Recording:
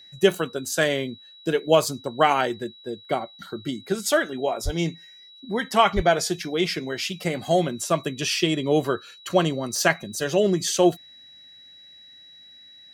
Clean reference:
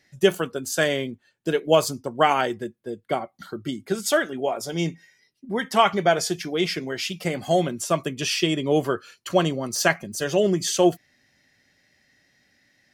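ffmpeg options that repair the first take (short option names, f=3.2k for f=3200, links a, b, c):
-filter_complex "[0:a]bandreject=f=3.9k:w=30,asplit=3[a][b][c];[a]afade=t=out:st=4.64:d=0.02[d];[b]highpass=f=140:w=0.5412,highpass=f=140:w=1.3066,afade=t=in:st=4.64:d=0.02,afade=t=out:st=4.76:d=0.02[e];[c]afade=t=in:st=4.76:d=0.02[f];[d][e][f]amix=inputs=3:normalize=0,asplit=3[g][h][i];[g]afade=t=out:st=5.95:d=0.02[j];[h]highpass=f=140:w=0.5412,highpass=f=140:w=1.3066,afade=t=in:st=5.95:d=0.02,afade=t=out:st=6.07:d=0.02[k];[i]afade=t=in:st=6.07:d=0.02[l];[j][k][l]amix=inputs=3:normalize=0"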